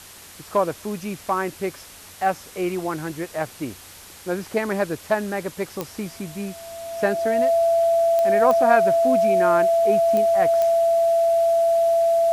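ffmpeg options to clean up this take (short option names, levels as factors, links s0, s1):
-af "adeclick=t=4,bandreject=f=91.1:t=h:w=4,bandreject=f=182.2:t=h:w=4,bandreject=f=273.3:t=h:w=4,bandreject=f=670:w=30,afwtdn=0.0079"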